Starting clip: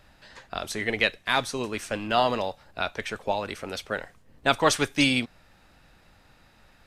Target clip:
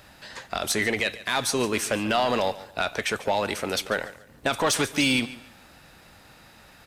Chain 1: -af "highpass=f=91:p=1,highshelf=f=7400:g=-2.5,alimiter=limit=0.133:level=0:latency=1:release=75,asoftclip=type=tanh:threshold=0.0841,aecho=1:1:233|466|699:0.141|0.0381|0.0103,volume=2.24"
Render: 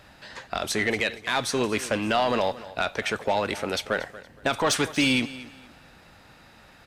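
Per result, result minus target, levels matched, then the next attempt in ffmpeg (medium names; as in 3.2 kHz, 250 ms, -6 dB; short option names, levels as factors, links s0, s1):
echo 90 ms late; 8 kHz band -3.0 dB
-af "highpass=f=91:p=1,highshelf=f=7400:g=-2.5,alimiter=limit=0.133:level=0:latency=1:release=75,asoftclip=type=tanh:threshold=0.0841,aecho=1:1:143|286|429:0.141|0.0381|0.0103,volume=2.24"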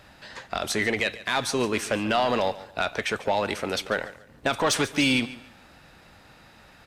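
8 kHz band -3.0 dB
-af "highpass=f=91:p=1,highshelf=f=7400:g=7.5,alimiter=limit=0.133:level=0:latency=1:release=75,asoftclip=type=tanh:threshold=0.0841,aecho=1:1:143|286|429:0.141|0.0381|0.0103,volume=2.24"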